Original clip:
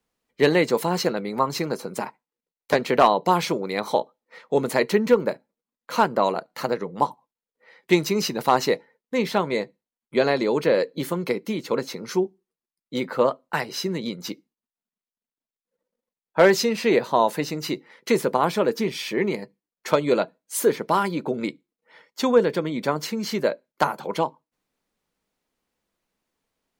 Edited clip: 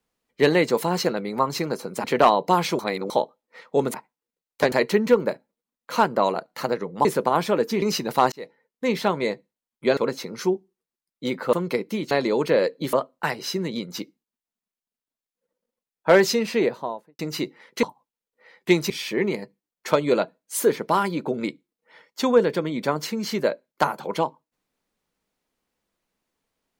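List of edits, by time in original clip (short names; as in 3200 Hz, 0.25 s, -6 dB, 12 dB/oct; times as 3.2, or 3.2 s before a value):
2.04–2.82 move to 4.72
3.57–3.88 reverse
7.05–8.12 swap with 18.13–18.9
8.62–9.14 fade in
10.27–11.09 swap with 11.67–13.23
16.69–17.49 studio fade out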